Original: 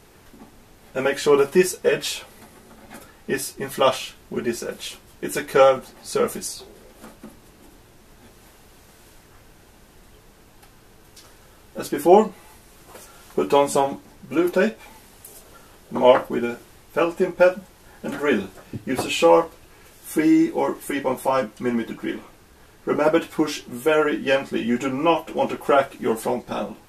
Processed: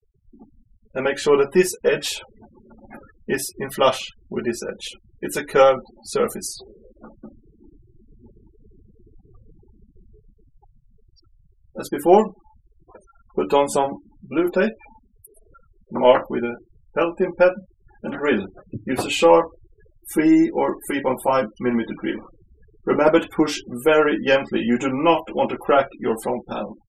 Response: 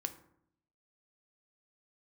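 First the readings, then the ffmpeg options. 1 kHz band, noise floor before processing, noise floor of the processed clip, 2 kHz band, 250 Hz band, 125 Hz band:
+1.0 dB, -51 dBFS, -60 dBFS, +1.0 dB, +1.5 dB, +1.0 dB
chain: -af "aeval=exprs='0.891*(cos(1*acos(clip(val(0)/0.891,-1,1)))-cos(1*PI/2))+0.00891*(cos(3*acos(clip(val(0)/0.891,-1,1)))-cos(3*PI/2))+0.0112*(cos(6*acos(clip(val(0)/0.891,-1,1)))-cos(6*PI/2))':c=same,dynaudnorm=f=470:g=9:m=5dB,afftfilt=real='re*gte(hypot(re,im),0.0178)':imag='im*gte(hypot(re,im),0.0178)':win_size=1024:overlap=0.75"

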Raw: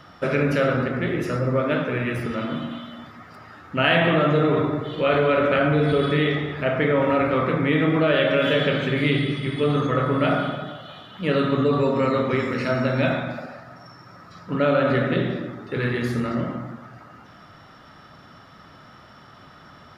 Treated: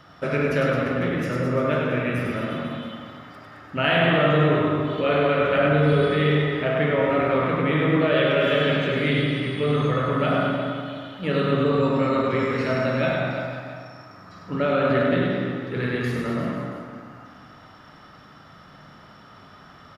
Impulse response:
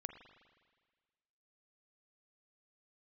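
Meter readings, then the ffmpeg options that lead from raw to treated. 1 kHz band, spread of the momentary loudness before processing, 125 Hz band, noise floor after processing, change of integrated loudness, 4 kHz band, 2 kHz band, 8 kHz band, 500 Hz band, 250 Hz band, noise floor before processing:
0.0 dB, 12 LU, +0.5 dB, -48 dBFS, -0.5 dB, -0.5 dB, 0.0 dB, n/a, 0.0 dB, -0.5 dB, -48 dBFS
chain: -filter_complex "[0:a]aecho=1:1:100|215|347.2|499.3|674.2:0.631|0.398|0.251|0.158|0.1[a];[1:a]atrim=start_sample=2205[b];[a][b]afir=irnorm=-1:irlink=0,volume=1.5dB"

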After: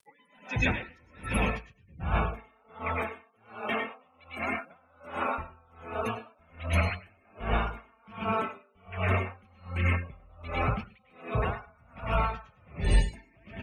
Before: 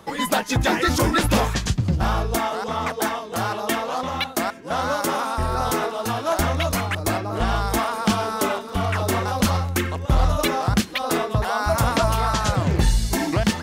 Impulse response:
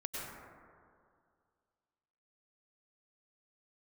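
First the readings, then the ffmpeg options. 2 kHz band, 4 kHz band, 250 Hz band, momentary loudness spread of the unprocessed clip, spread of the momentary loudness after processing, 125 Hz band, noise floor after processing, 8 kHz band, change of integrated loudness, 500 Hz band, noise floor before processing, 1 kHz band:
-7.5 dB, -16.0 dB, -13.0 dB, 5 LU, 19 LU, -9.0 dB, -64 dBFS, -22.5 dB, -9.0 dB, -11.5 dB, -35 dBFS, -11.5 dB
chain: -filter_complex "[0:a]acrossover=split=220[a][b];[b]alimiter=limit=-16.5dB:level=0:latency=1:release=78[c];[a][c]amix=inputs=2:normalize=0,equalizer=f=2.4k:t=o:w=0.64:g=12[d];[1:a]atrim=start_sample=2205,atrim=end_sample=6615[e];[d][e]afir=irnorm=-1:irlink=0,acrusher=bits=6:mix=0:aa=0.000001,aecho=1:1:217:0.355,afftdn=nr=34:nf=-29,acompressor=mode=upward:threshold=-42dB:ratio=2.5,superequalizer=6b=0.562:16b=2.82,aeval=exprs='val(0)*pow(10,-36*(0.5-0.5*cos(2*PI*1.3*n/s))/20)':c=same,volume=-2dB"

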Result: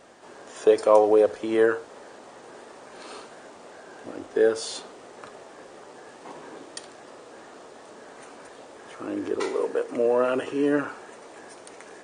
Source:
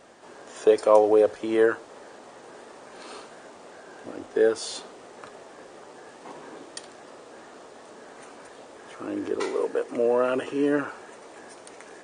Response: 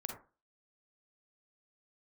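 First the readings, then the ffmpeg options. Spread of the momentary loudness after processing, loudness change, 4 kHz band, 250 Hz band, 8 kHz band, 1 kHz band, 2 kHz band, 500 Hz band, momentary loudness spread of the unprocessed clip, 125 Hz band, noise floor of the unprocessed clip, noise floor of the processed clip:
24 LU, +0.5 dB, +0.5 dB, +0.5 dB, +0.5 dB, +0.5 dB, +0.5 dB, +0.5 dB, 23 LU, +0.5 dB, -48 dBFS, -47 dBFS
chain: -filter_complex "[0:a]asplit=2[a][b];[1:a]atrim=start_sample=2205[c];[b][c]afir=irnorm=-1:irlink=0,volume=-12dB[d];[a][d]amix=inputs=2:normalize=0,volume=-1dB"

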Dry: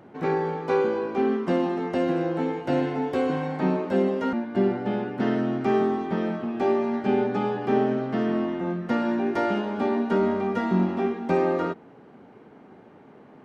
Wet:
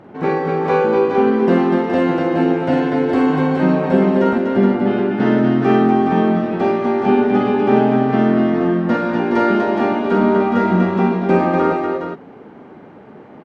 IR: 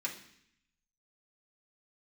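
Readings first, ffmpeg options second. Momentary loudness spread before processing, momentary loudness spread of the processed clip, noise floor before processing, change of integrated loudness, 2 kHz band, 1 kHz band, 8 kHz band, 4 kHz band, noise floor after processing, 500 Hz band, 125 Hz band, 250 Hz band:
4 LU, 4 LU, -50 dBFS, +9.5 dB, +10.0 dB, +10.0 dB, n/a, +7.5 dB, -40 dBFS, +8.5 dB, +10.0 dB, +10.0 dB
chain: -filter_complex "[0:a]lowpass=f=3.8k:p=1,asplit=2[a][b];[b]aecho=0:1:45|244|419:0.596|0.596|0.531[c];[a][c]amix=inputs=2:normalize=0,volume=7dB"

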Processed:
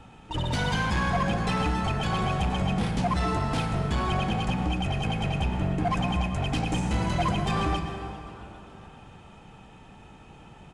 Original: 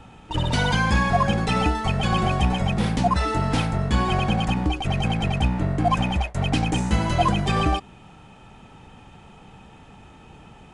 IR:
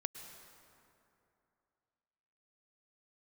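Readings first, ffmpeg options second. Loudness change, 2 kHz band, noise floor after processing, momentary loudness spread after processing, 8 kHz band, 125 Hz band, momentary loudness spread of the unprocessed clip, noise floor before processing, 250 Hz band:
-5.0 dB, -4.5 dB, -50 dBFS, 10 LU, -4.5 dB, -4.5 dB, 4 LU, -48 dBFS, -4.5 dB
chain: -filter_complex "[0:a]asoftclip=type=tanh:threshold=-17.5dB,asplit=5[a][b][c][d][e];[b]adelay=399,afreqshift=140,volume=-22dB[f];[c]adelay=798,afreqshift=280,volume=-27.8dB[g];[d]adelay=1197,afreqshift=420,volume=-33.7dB[h];[e]adelay=1596,afreqshift=560,volume=-39.5dB[i];[a][f][g][h][i]amix=inputs=5:normalize=0[j];[1:a]atrim=start_sample=2205[k];[j][k]afir=irnorm=-1:irlink=0,volume=-1.5dB"

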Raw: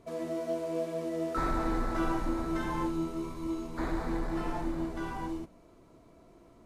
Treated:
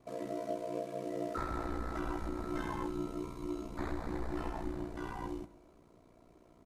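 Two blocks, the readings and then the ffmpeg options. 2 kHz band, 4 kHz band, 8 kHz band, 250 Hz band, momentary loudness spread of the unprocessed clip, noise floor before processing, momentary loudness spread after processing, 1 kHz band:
-6.0 dB, -5.5 dB, -5.5 dB, -6.5 dB, 5 LU, -58 dBFS, 4 LU, -5.5 dB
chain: -af "aeval=exprs='val(0)*sin(2*PI*30*n/s)':c=same,alimiter=level_in=0.5dB:limit=-24dB:level=0:latency=1:release=289,volume=-0.5dB,aecho=1:1:138|276|414|552:0.0794|0.0421|0.0223|0.0118,volume=-1.5dB"

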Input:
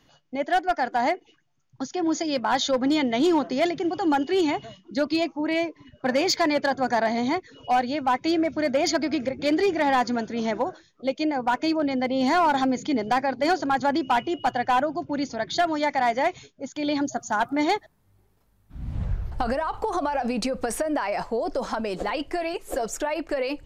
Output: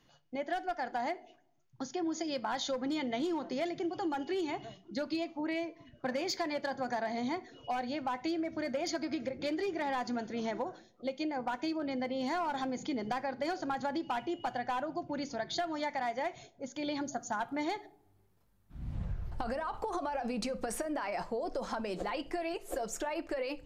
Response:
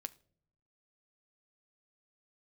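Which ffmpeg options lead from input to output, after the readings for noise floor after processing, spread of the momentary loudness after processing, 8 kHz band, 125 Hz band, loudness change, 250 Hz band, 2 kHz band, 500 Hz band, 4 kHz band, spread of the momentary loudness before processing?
-67 dBFS, 6 LU, -9.5 dB, -9.0 dB, -11.0 dB, -11.0 dB, -11.5 dB, -10.5 dB, -11.0 dB, 8 LU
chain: -filter_complex "[1:a]atrim=start_sample=2205,asetrate=52920,aresample=44100[a];[0:a][a]afir=irnorm=-1:irlink=0,acompressor=threshold=-30dB:ratio=6,volume=-1.5dB"

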